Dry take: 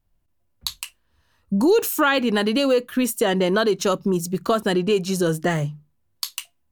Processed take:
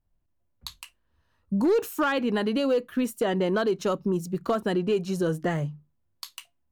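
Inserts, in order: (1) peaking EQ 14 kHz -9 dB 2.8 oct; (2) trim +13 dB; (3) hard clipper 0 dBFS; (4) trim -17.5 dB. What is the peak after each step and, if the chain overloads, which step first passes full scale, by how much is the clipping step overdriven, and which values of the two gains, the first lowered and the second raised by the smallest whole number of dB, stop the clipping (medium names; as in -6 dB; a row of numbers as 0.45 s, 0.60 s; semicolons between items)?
-9.5 dBFS, +3.5 dBFS, 0.0 dBFS, -17.5 dBFS; step 2, 3.5 dB; step 2 +9 dB, step 4 -13.5 dB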